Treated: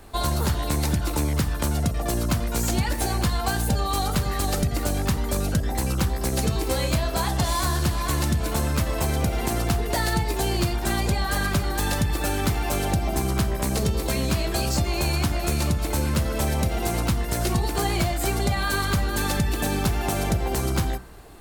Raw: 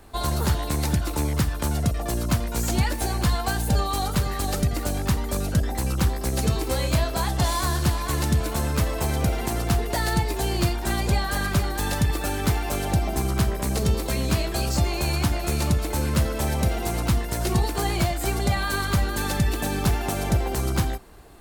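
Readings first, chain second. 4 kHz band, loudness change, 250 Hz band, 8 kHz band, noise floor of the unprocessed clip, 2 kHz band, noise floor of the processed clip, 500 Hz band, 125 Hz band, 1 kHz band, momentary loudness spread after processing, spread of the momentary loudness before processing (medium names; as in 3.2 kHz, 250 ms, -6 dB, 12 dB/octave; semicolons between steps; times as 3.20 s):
+1.0 dB, 0.0 dB, +0.5 dB, +1.0 dB, -29 dBFS, +0.5 dB, -28 dBFS, +0.5 dB, -0.5 dB, +0.5 dB, 1 LU, 2 LU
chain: de-hum 62.43 Hz, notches 33; compression, threshold -22 dBFS, peak gain reduction 6 dB; trim +3 dB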